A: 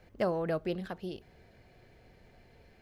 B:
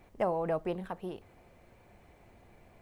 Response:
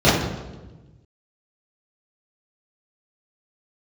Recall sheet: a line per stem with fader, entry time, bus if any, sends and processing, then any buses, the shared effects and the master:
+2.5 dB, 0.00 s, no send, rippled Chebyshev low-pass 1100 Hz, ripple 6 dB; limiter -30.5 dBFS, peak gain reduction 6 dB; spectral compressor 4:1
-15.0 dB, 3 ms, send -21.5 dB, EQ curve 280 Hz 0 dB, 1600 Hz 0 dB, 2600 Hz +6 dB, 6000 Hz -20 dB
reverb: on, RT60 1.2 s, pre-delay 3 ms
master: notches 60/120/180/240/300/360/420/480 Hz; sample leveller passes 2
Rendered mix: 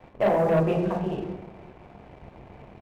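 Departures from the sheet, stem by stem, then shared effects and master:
stem A +2.5 dB -> -6.5 dB; stem B -15.0 dB -> -4.5 dB

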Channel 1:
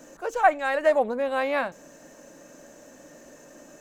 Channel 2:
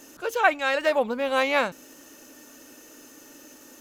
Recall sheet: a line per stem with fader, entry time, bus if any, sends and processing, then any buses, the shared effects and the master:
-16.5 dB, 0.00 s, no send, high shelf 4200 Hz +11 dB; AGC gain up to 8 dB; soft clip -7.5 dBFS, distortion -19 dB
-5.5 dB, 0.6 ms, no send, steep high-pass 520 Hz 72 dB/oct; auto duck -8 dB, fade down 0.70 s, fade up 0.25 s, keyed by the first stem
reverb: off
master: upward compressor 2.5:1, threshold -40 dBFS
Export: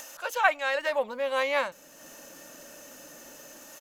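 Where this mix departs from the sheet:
stem 1: missing high shelf 4200 Hz +11 dB; stem 2 -5.5 dB -> +3.5 dB

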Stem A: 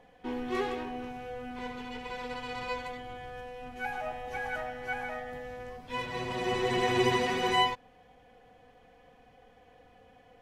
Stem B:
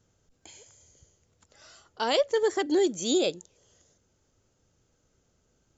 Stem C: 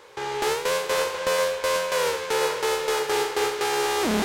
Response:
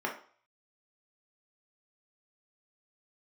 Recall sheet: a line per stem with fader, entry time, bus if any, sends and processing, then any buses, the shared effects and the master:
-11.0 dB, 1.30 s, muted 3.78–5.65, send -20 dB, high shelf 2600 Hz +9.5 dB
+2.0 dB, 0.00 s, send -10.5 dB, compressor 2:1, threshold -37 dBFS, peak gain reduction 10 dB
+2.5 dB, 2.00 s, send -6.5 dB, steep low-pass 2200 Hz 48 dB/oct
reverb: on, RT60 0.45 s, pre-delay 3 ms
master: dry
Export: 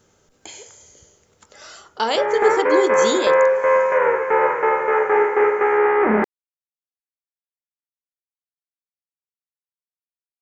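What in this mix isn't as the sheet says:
stem A: muted; stem B +2.0 dB -> +10.5 dB; master: extra low shelf 140 Hz -7.5 dB

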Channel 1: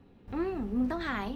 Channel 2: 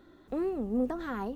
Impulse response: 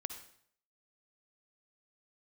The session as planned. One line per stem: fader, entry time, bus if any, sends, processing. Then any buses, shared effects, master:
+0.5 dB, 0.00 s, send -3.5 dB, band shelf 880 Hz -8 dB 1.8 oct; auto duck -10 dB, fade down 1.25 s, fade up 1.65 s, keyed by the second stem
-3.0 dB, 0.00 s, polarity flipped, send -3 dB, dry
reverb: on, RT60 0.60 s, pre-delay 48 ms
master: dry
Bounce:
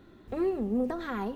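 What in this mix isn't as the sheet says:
stem 1: send off; stem 2: polarity flipped

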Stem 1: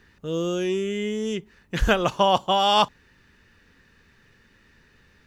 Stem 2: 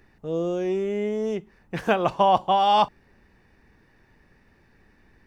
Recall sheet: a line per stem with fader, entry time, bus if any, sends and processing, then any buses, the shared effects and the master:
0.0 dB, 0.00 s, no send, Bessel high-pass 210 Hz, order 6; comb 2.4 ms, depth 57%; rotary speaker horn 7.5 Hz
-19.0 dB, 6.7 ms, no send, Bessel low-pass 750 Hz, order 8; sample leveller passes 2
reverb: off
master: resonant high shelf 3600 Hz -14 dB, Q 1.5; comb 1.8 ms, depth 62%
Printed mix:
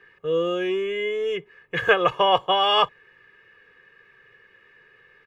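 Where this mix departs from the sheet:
stem 1: missing rotary speaker horn 7.5 Hz; stem 2: polarity flipped

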